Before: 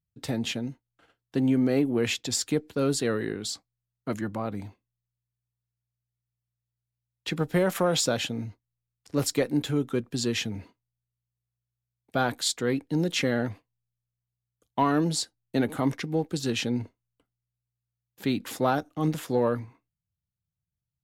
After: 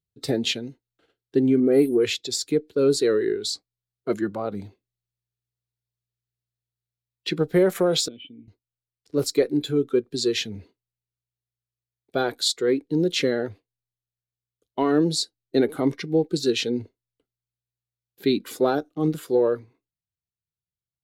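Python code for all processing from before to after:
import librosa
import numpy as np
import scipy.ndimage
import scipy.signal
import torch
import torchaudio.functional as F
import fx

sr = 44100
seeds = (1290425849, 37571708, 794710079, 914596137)

y = fx.chain(x, sr, fx.high_shelf_res(hz=7400.0, db=8.5, q=3.0),
    fx.dispersion(late='highs', ms=73.0, hz=2800.0), at=(1.6, 2.04))
y = fx.chain(y, sr, fx.formant_cascade(vowel='i'),
    fx.high_shelf(hz=3400.0, db=9.5), at=(8.08, 8.48))
y = fx.noise_reduce_blind(y, sr, reduce_db=8)
y = fx.graphic_eq_15(y, sr, hz=(400, 1000, 4000), db=(11, -5, 7))
y = fx.rider(y, sr, range_db=4, speed_s=2.0)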